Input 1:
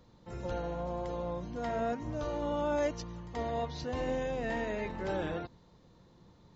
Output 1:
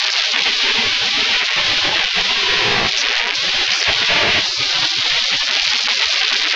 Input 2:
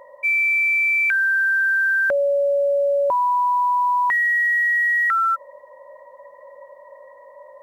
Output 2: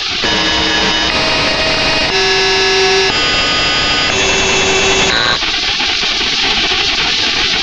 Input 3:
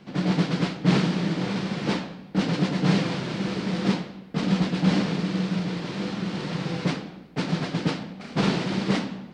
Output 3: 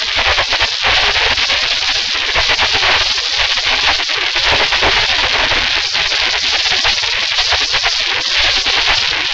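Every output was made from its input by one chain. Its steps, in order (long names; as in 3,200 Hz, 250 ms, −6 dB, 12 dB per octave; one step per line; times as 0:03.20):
linear delta modulator 32 kbit/s, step −22 dBFS
high-frequency loss of the air 210 metres
gate on every frequency bin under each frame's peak −25 dB weak
speech leveller 2 s
dynamic equaliser 1,300 Hz, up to −6 dB, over −57 dBFS, Q 3.2
flanger 0.52 Hz, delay 1.1 ms, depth 1.6 ms, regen +86%
boost into a limiter +35.5 dB
highs frequency-modulated by the lows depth 0.16 ms
level −1 dB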